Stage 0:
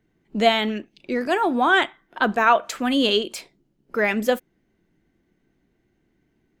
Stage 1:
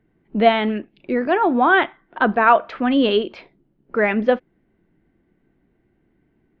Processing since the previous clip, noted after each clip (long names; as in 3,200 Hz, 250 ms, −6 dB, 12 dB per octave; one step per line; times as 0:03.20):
Gaussian smoothing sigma 3 samples
level +4 dB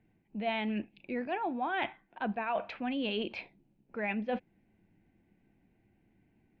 thirty-one-band graphic EQ 100 Hz +9 dB, 200 Hz +5 dB, 400 Hz −4 dB, 800 Hz +6 dB, 1,250 Hz −7 dB, 2,500 Hz +11 dB, 4,000 Hz +3 dB
reversed playback
downward compressor 5 to 1, threshold −25 dBFS, peak gain reduction 16.5 dB
reversed playback
level −7 dB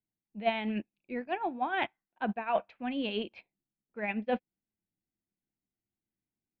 expander for the loud parts 2.5 to 1, over −50 dBFS
level +6 dB